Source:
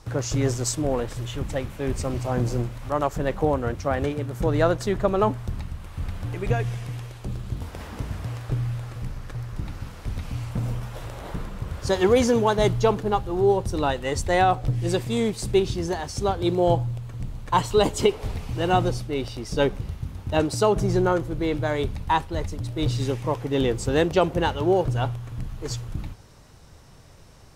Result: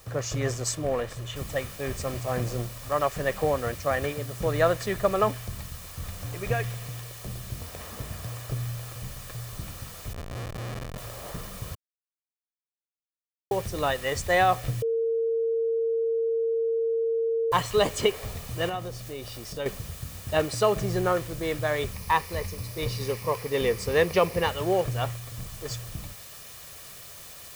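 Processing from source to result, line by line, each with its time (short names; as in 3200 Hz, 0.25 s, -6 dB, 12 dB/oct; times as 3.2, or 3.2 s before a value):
1.36 noise floor step -53 dB -42 dB
10.13–10.98 Schmitt trigger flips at -28.5 dBFS
11.75–13.51 mute
14.82–17.52 bleep 456 Hz -20 dBFS
18.69–19.66 compressor 2.5:1, threshold -30 dBFS
21.93–24.49 ripple EQ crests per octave 0.86, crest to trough 7 dB
whole clip: low shelf 77 Hz -11 dB; comb 1.7 ms, depth 41%; dynamic EQ 2000 Hz, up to +6 dB, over -40 dBFS, Q 1.2; gain -3.5 dB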